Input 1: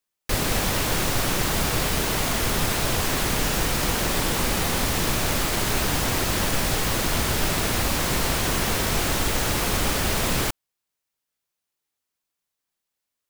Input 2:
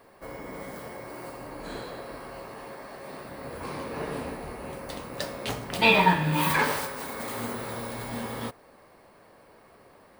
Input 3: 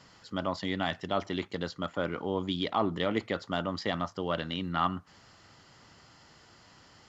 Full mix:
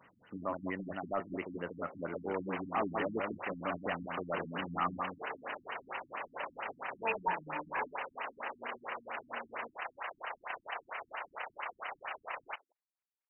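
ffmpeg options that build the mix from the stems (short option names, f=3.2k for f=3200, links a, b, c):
-filter_complex "[0:a]highpass=f=710:w=0.5412,highpass=f=710:w=1.3066,tremolo=f=31:d=0.571,adelay=2050,volume=-5.5dB,asplit=2[a][b];[b]volume=-21dB[c];[1:a]highpass=570,equalizer=f=1.8k:t=o:w=1.9:g=-7,adelay=1200,volume=-4.5dB[d];[2:a]aemphasis=mode=production:type=bsi,volume=-2dB,asplit=2[e][f];[f]volume=-4.5dB[g];[c][g]amix=inputs=2:normalize=0,aecho=0:1:165:1[h];[a][d][e][h]amix=inputs=4:normalize=0,asoftclip=type=tanh:threshold=-23dB,afftfilt=real='re*lt(b*sr/1024,280*pow(3100/280,0.5+0.5*sin(2*PI*4.4*pts/sr)))':imag='im*lt(b*sr/1024,280*pow(3100/280,0.5+0.5*sin(2*PI*4.4*pts/sr)))':win_size=1024:overlap=0.75"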